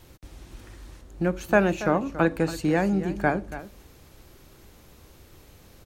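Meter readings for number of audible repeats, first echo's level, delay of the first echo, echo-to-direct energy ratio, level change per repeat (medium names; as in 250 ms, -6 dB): 1, -14.0 dB, 281 ms, -14.0 dB, no regular repeats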